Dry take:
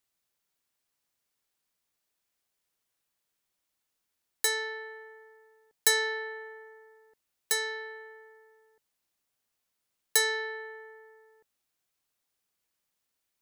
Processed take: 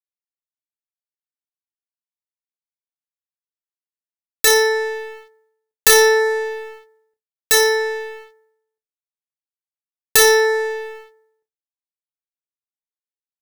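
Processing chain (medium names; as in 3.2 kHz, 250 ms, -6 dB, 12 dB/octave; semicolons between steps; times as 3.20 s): self-modulated delay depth 0.098 ms; on a send: flutter echo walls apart 5.1 m, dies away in 0.36 s; on the sum: expander -48 dBFS; waveshaping leveller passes 3; trim +6.5 dB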